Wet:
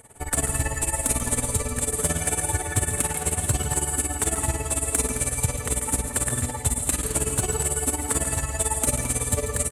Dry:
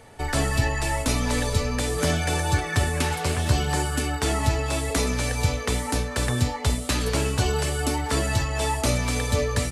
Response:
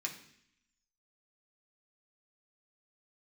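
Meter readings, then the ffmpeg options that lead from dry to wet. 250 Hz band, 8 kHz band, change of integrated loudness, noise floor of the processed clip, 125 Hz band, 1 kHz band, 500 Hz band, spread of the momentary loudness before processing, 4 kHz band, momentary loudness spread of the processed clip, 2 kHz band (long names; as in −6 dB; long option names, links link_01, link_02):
−4.0 dB, +8.5 dB, +0.5 dB, −34 dBFS, −4.0 dB, −4.0 dB, −3.5 dB, 2 LU, −8.0 dB, 2 LU, −5.0 dB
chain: -af "highshelf=frequency=6600:width_type=q:width=3:gain=9.5,acontrast=26,tremolo=f=18:d=0.9,aecho=1:1:139.9|215.7:0.316|0.282,volume=-5.5dB"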